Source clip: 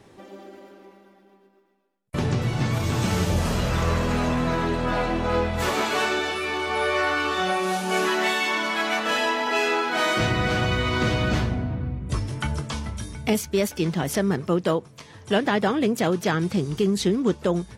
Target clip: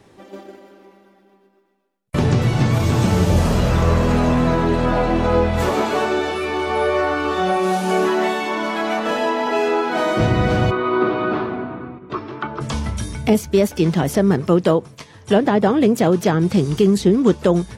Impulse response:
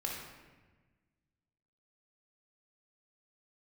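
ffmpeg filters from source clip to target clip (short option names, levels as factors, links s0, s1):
-filter_complex "[0:a]acrossover=split=990[s0][s1];[s1]acompressor=threshold=0.0158:ratio=6[s2];[s0][s2]amix=inputs=2:normalize=0,asplit=3[s3][s4][s5];[s3]afade=t=out:st=10.7:d=0.02[s6];[s4]highpass=340,equalizer=f=370:t=q:w=4:g=9,equalizer=f=520:t=q:w=4:g=-7,equalizer=f=1200:t=q:w=4:g=8,equalizer=f=2000:t=q:w=4:g=-6,equalizer=f=3000:t=q:w=4:g=-6,lowpass=f=3300:w=0.5412,lowpass=f=3300:w=1.3066,afade=t=in:st=10.7:d=0.02,afade=t=out:st=12.6:d=0.02[s7];[s5]afade=t=in:st=12.6:d=0.02[s8];[s6][s7][s8]amix=inputs=3:normalize=0,agate=range=0.501:threshold=0.00794:ratio=16:detection=peak,volume=2.37"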